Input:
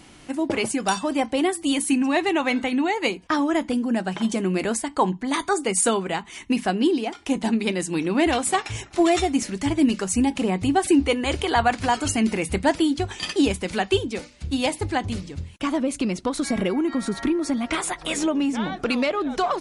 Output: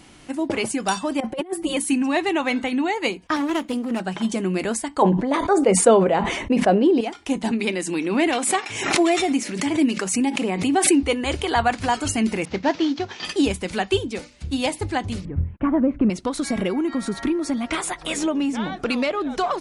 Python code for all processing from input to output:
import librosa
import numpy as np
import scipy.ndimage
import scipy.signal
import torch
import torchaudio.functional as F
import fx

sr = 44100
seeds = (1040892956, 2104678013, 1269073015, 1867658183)

y = fx.chain(x, sr, fx.peak_eq(hz=6300.0, db=-13.0, octaves=3.0),
    fx.comb(ms=5.5, depth=0.95),
    fx.over_compress(threshold_db=-25.0, ratio=-0.5), at=(1.2, 1.77))
y = fx.chain(y, sr, fx.lower_of_two(delay_ms=0.32),
    fx.highpass(hz=170.0, slope=6), at=(3.36, 4.0))
y = fx.chain(y, sr, fx.lowpass(hz=1700.0, slope=6),
    fx.peak_eq(hz=560.0, db=13.0, octaves=0.72),
    fx.sustainer(db_per_s=44.0), at=(5.02, 7.01))
y = fx.chain(y, sr, fx.cheby1_highpass(hz=250.0, order=2),
    fx.peak_eq(hz=2300.0, db=4.0, octaves=0.52),
    fx.pre_swell(db_per_s=60.0), at=(7.51, 11.03))
y = fx.chain(y, sr, fx.cvsd(bps=32000),
    fx.highpass(hz=160.0, slope=12), at=(12.45, 13.25))
y = fx.chain(y, sr, fx.lowpass(hz=1800.0, slope=24),
    fx.low_shelf(hz=280.0, db=10.5), at=(15.25, 16.1))